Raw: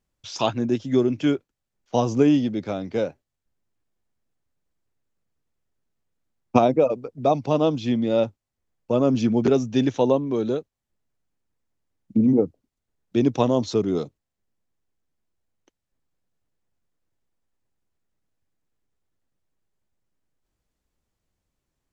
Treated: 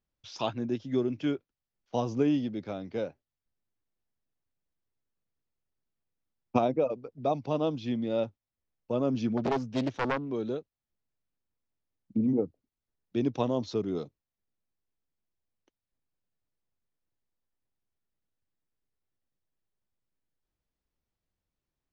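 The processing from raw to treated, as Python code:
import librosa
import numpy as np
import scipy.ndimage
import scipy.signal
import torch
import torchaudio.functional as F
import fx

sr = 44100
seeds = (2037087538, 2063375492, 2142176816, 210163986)

y = fx.self_delay(x, sr, depth_ms=0.74, at=(9.37, 10.31))
y = scipy.signal.sosfilt(scipy.signal.butter(4, 5800.0, 'lowpass', fs=sr, output='sos'), y)
y = F.gain(torch.from_numpy(y), -8.5).numpy()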